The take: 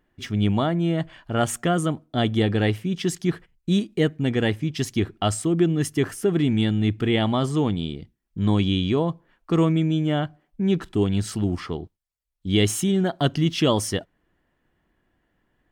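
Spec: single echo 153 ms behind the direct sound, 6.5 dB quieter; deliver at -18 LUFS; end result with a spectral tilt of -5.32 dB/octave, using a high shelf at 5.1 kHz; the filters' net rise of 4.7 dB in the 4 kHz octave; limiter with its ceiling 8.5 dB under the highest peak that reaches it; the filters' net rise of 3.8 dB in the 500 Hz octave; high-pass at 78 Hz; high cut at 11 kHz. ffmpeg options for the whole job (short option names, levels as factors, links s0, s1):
-af "highpass=78,lowpass=11000,equalizer=f=500:t=o:g=5,equalizer=f=4000:t=o:g=5,highshelf=f=5100:g=3.5,alimiter=limit=0.266:level=0:latency=1,aecho=1:1:153:0.473,volume=1.68"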